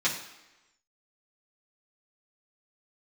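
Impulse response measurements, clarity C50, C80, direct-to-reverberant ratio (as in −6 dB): 7.5 dB, 10.0 dB, −8.0 dB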